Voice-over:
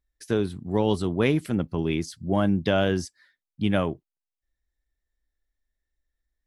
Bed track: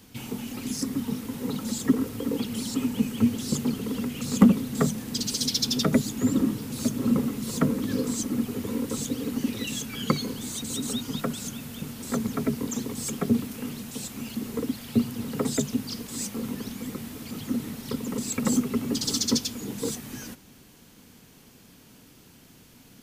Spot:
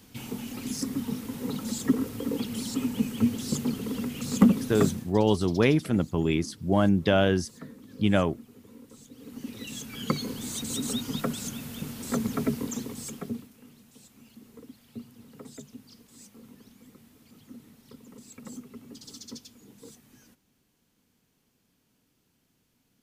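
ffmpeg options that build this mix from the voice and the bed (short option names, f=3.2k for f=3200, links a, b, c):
-filter_complex "[0:a]adelay=4400,volume=0.5dB[a];[1:a]volume=18dB,afade=t=out:st=4.86:d=0.27:silence=0.11885,afade=t=in:st=9.11:d=1.46:silence=0.1,afade=t=out:st=12.44:d=1.07:silence=0.125893[b];[a][b]amix=inputs=2:normalize=0"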